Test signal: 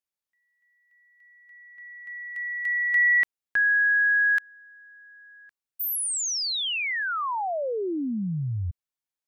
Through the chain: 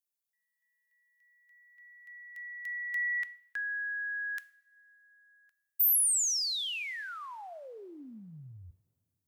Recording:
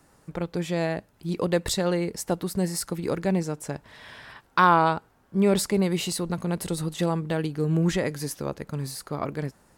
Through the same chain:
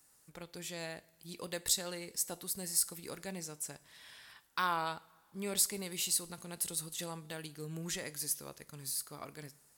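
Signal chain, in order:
first-order pre-emphasis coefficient 0.9
coupled-rooms reverb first 0.48 s, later 2.6 s, from −20 dB, DRR 14.5 dB

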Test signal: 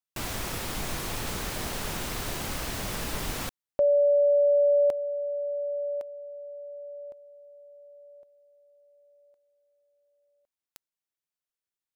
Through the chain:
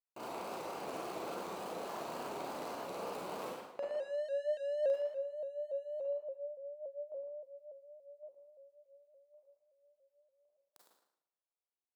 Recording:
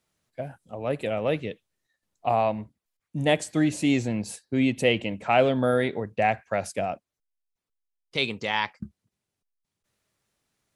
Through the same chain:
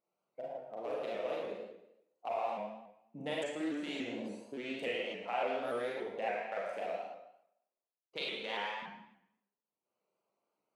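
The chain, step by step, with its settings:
adaptive Wiener filter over 25 samples
high-pass filter 450 Hz 12 dB per octave
downward compressor 2.5 to 1, threshold −41 dBFS
on a send: tape delay 115 ms, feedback 35%, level −3.5 dB, low-pass 4,100 Hz
on the sum: four-comb reverb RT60 0.62 s, combs from 33 ms, DRR −3 dB
pitch modulation by a square or saw wave saw up 3.5 Hz, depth 100 cents
level −3.5 dB

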